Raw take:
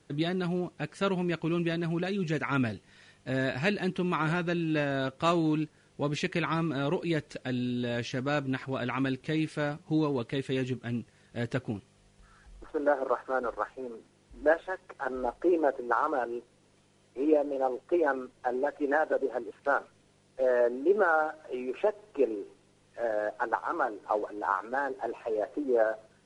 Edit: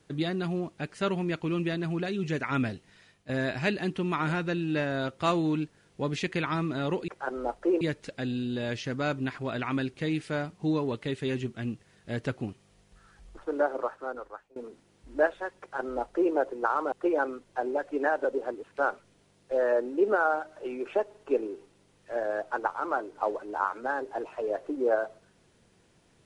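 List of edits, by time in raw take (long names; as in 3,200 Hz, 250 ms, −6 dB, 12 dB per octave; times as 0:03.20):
0:02.75–0:03.29: fade out equal-power, to −11 dB
0:12.86–0:13.83: fade out, to −23 dB
0:14.87–0:15.60: duplicate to 0:07.08
0:16.19–0:17.80: remove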